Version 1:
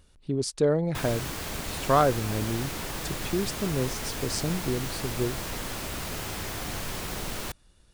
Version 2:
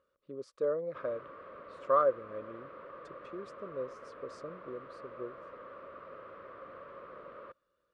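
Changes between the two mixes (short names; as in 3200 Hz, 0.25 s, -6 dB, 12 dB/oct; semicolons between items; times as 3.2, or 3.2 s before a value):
background: add air absorption 430 m; master: add double band-pass 800 Hz, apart 1.1 oct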